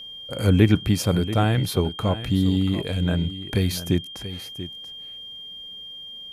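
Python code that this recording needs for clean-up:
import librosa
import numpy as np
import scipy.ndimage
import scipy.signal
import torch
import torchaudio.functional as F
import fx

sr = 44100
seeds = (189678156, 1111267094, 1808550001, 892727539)

y = fx.notch(x, sr, hz=3200.0, q=30.0)
y = fx.fix_echo_inverse(y, sr, delay_ms=685, level_db=-13.0)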